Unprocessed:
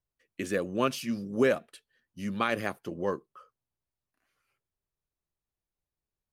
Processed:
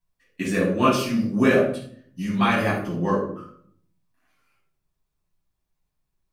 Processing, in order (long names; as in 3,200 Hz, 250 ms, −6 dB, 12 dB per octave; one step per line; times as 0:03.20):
rectangular room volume 750 cubic metres, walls furnished, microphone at 9 metres
level −2.5 dB